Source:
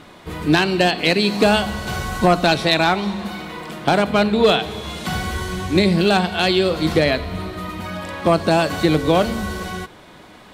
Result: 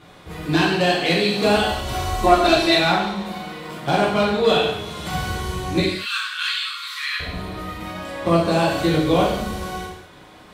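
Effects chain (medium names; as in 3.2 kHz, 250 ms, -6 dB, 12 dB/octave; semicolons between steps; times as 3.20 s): 1.62–2.74 s: comb 3 ms, depth 84%; 5.80–7.20 s: steep high-pass 1.1 kHz 96 dB/octave; gated-style reverb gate 270 ms falling, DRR -6.5 dB; trim -9 dB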